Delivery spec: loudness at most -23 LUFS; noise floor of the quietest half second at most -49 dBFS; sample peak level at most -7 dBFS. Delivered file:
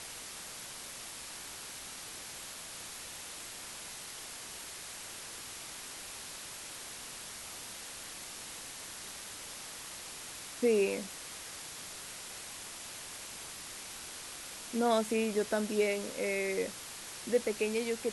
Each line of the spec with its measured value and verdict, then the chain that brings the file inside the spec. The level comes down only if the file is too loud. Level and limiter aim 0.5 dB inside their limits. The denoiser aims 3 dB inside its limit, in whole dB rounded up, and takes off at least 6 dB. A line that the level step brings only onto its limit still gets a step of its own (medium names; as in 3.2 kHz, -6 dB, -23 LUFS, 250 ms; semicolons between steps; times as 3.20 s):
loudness -37.5 LUFS: pass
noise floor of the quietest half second -45 dBFS: fail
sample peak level -16.5 dBFS: pass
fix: noise reduction 7 dB, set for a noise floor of -45 dBFS